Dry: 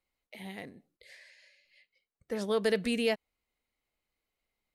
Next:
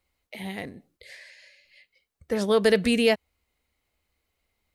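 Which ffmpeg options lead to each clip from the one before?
-af "equalizer=f=74:w=2.1:g=11,volume=2.51"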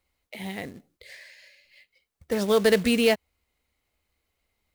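-af "acrusher=bits=4:mode=log:mix=0:aa=0.000001"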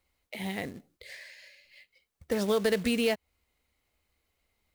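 -af "acompressor=threshold=0.0501:ratio=2.5"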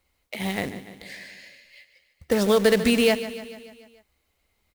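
-filter_complex "[0:a]asplit=2[s0][s1];[s1]aeval=exprs='val(0)*gte(abs(val(0)),0.0266)':c=same,volume=0.335[s2];[s0][s2]amix=inputs=2:normalize=0,aecho=1:1:146|292|438|584|730|876:0.211|0.125|0.0736|0.0434|0.0256|0.0151,volume=1.78"

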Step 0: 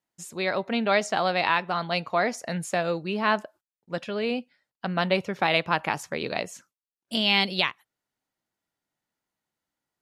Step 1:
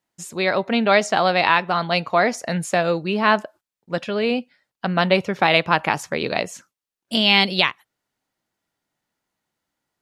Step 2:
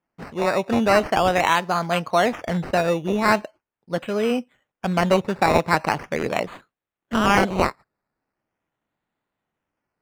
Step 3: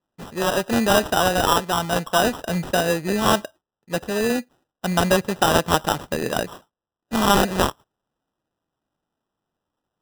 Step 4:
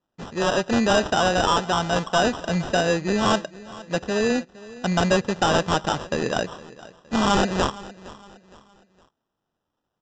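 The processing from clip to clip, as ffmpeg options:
-af "highshelf=f=9800:g=-3.5,volume=2.11"
-af "acrusher=samples=11:mix=1:aa=0.000001:lfo=1:lforange=6.6:lforate=0.41,aemphasis=mode=reproduction:type=75kf"
-af "acrusher=samples=20:mix=1:aa=0.000001"
-af "aresample=16000,asoftclip=type=tanh:threshold=0.237,aresample=44100,aecho=1:1:463|926|1389:0.112|0.0415|0.0154,volume=1.12"

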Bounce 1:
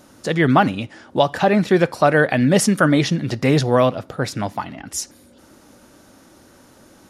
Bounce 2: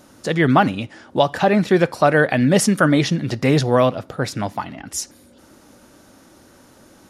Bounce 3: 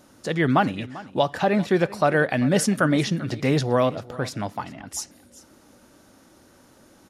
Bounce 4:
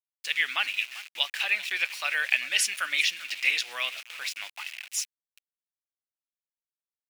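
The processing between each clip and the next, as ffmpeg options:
-af anull
-af "aecho=1:1:393:0.119,volume=0.562"
-af "aeval=exprs='val(0)*gte(abs(val(0)),0.015)':c=same,highpass=f=2500:t=q:w=4.2"

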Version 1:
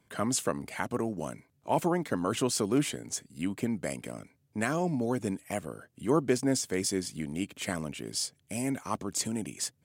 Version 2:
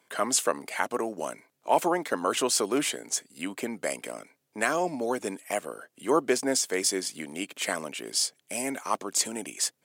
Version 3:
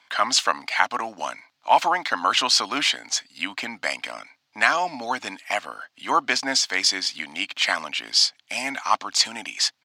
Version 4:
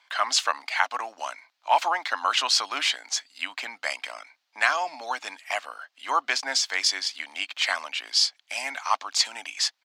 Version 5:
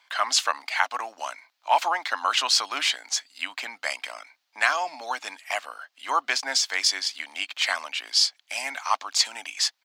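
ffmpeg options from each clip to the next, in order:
-af "highpass=430,volume=2"
-af "firequalizer=gain_entry='entry(100,0);entry(170,-8);entry(270,-2);entry(390,-14);entry(770,7);entry(4400,13);entry(8900,-10)':delay=0.05:min_phase=1,volume=1.12"
-af "highpass=540,volume=0.708"
-af "highshelf=f=11000:g=7.5"

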